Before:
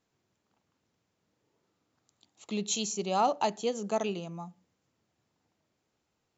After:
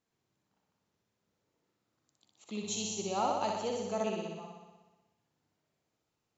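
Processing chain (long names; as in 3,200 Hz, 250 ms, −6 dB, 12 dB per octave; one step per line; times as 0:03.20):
0:02.62–0:03.93: hum with harmonics 100 Hz, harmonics 11, −51 dBFS −4 dB per octave
flutter between parallel walls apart 10.5 metres, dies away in 1.2 s
level −6.5 dB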